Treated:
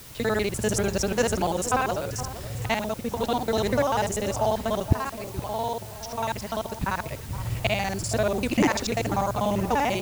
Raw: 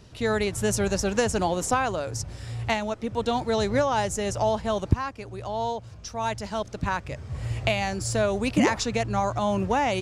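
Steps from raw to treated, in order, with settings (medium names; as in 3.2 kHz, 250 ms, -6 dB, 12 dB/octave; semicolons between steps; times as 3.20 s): time reversed locally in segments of 49 ms; added noise white -46 dBFS; echo whose repeats swap between lows and highs 468 ms, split 1.2 kHz, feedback 52%, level -12 dB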